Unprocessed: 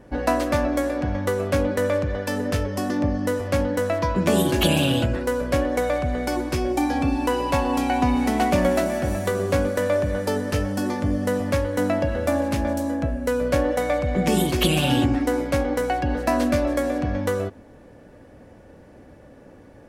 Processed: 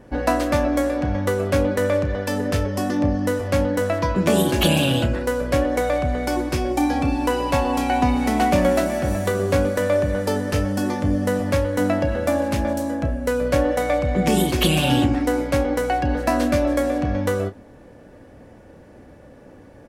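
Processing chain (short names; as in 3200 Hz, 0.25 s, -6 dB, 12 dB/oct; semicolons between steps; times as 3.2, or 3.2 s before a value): doubler 31 ms -12 dB; gain +1.5 dB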